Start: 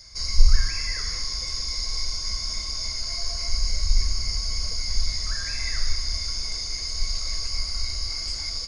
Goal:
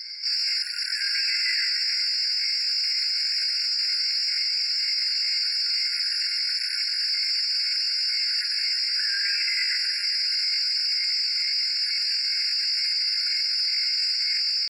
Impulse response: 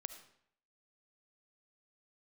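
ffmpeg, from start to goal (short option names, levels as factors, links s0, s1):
-filter_complex "[0:a]tiltshelf=f=820:g=-9,asplit=2[s0][s1];[s1]aeval=exprs='0.422*sin(PI/2*5.01*val(0)/0.422)':c=same,volume=0.562[s2];[s0][s2]amix=inputs=2:normalize=0,bandreject=f=427.3:t=h:w=4,bandreject=f=854.6:t=h:w=4,bandreject=f=1281.9:t=h:w=4,bandreject=f=1709.2:t=h:w=4,bandreject=f=2136.5:t=h:w=4,bandreject=f=2563.8:t=h:w=4,atempo=0.59,highpass=120,lowpass=5300,acrossover=split=410[s3][s4];[s3]dynaudnorm=f=150:g=5:m=5.62[s5];[s5][s4]amix=inputs=2:normalize=0,afftfilt=real='re*eq(mod(floor(b*sr/1024/1400),2),1)':imag='im*eq(mod(floor(b*sr/1024/1400),2),1)':win_size=1024:overlap=0.75,volume=0.398"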